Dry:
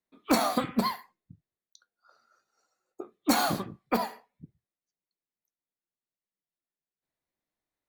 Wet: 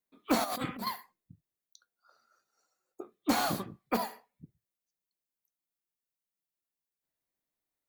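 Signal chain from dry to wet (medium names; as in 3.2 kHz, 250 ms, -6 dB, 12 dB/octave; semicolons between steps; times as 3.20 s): treble shelf 9.1 kHz +10 dB; 0.44–0.87 s: compressor with a negative ratio -33 dBFS, ratio -1; slew-rate limiter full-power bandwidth 230 Hz; trim -3.5 dB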